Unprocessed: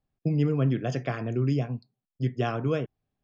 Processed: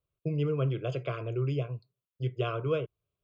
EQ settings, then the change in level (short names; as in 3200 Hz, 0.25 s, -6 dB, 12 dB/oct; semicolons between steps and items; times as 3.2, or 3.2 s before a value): HPF 48 Hz; fixed phaser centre 1200 Hz, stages 8; 0.0 dB